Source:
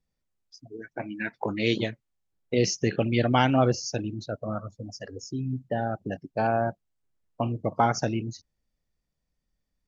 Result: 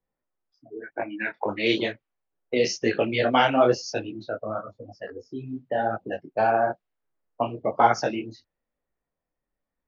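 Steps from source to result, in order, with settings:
low-pass that shuts in the quiet parts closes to 1,500 Hz, open at −20.5 dBFS
three-way crossover with the lows and the highs turned down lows −14 dB, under 310 Hz, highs −24 dB, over 5,400 Hz
micro pitch shift up and down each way 35 cents
level +8.5 dB

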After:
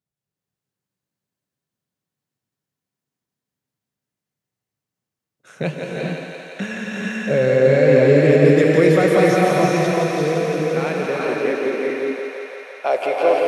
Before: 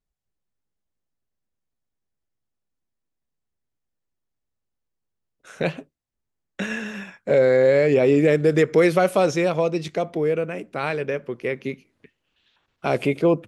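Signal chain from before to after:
feedback echo with a high-pass in the loop 171 ms, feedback 84%, high-pass 360 Hz, level −5 dB
high-pass filter sweep 130 Hz → 590 Hz, 0:10.08–0:12.70
reverb whose tail is shaped and stops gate 470 ms rising, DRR −1.5 dB
level −2 dB

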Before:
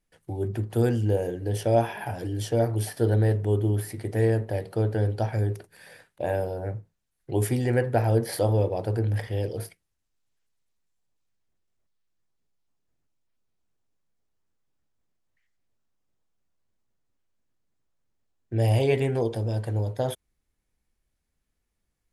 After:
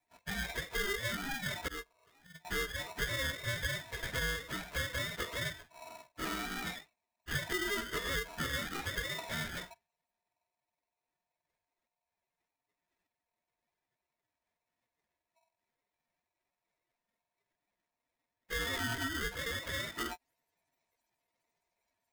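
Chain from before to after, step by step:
frequency axis turned over on the octave scale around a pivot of 540 Hz
flat-topped bell 1,200 Hz +14 dB 1.2 octaves
downward compressor 3 to 1, threshold −33 dBFS, peak gain reduction 14.5 dB
0:01.68–0:02.45: noise gate −28 dBFS, range −27 dB
ring modulator with a square carrier 810 Hz
level −4 dB

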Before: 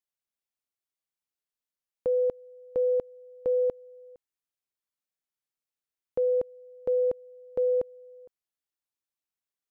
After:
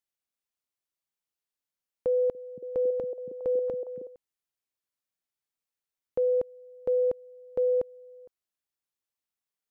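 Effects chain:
0:02.07–0:04.07: echo through a band-pass that steps 277 ms, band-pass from 180 Hz, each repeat 0.7 octaves, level 0 dB

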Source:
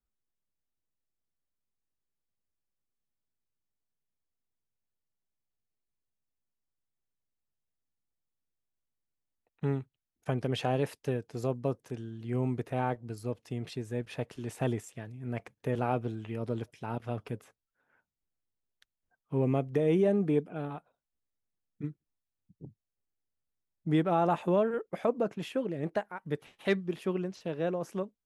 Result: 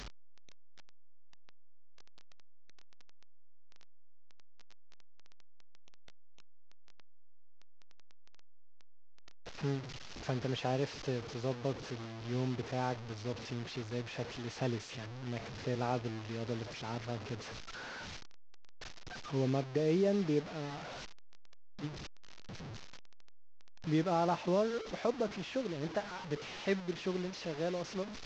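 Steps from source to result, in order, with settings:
linear delta modulator 32 kbit/s, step −34.5 dBFS
level −4.5 dB

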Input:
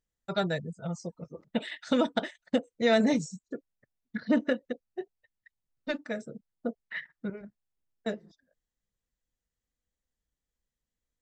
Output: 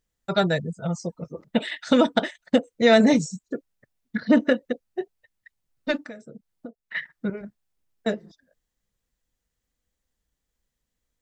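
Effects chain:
0:06.03–0:06.95: downward compressor 8 to 1, threshold −45 dBFS, peak gain reduction 18 dB
level +7.5 dB

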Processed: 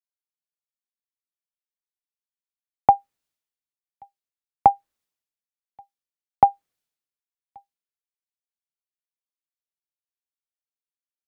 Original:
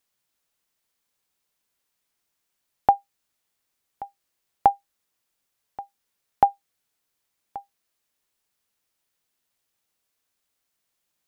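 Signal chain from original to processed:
high-shelf EQ 2,100 Hz −11.5 dB
multiband upward and downward expander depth 100%
level −4.5 dB

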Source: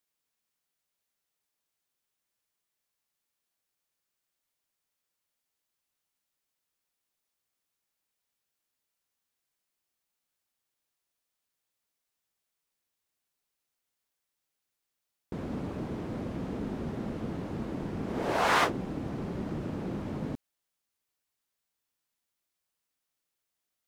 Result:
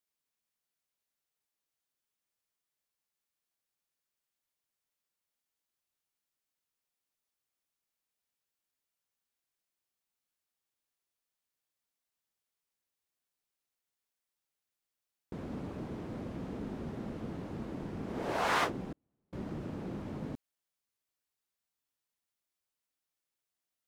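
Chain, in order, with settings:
0:18.92–0:19.33: gate with flip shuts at −32 dBFS, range −42 dB
level −5 dB

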